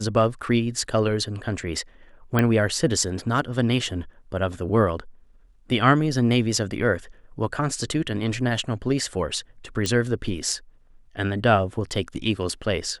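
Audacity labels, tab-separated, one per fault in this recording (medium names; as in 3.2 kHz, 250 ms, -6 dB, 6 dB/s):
2.390000	2.390000	pop -8 dBFS
9.860000	9.860000	pop -11 dBFS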